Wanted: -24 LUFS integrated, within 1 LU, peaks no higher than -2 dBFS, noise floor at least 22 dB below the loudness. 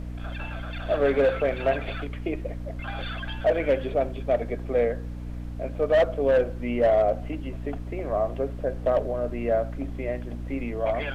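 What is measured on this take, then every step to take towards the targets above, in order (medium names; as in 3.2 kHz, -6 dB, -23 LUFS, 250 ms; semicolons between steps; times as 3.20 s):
hum 60 Hz; highest harmonic 300 Hz; hum level -32 dBFS; noise floor -35 dBFS; noise floor target -49 dBFS; loudness -26.5 LUFS; peak level -13.0 dBFS; loudness target -24.0 LUFS
-> de-hum 60 Hz, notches 5; noise print and reduce 14 dB; trim +2.5 dB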